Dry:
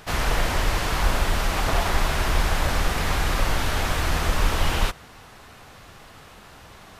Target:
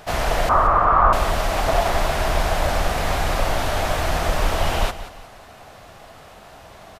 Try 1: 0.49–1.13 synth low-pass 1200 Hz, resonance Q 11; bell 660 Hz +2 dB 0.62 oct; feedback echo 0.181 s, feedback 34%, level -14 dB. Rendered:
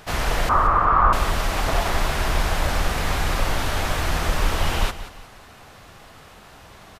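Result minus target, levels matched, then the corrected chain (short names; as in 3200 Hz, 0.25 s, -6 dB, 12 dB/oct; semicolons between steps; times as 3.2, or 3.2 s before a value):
500 Hz band -4.0 dB
0.49–1.13 synth low-pass 1200 Hz, resonance Q 11; bell 660 Hz +10 dB 0.62 oct; feedback echo 0.181 s, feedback 34%, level -14 dB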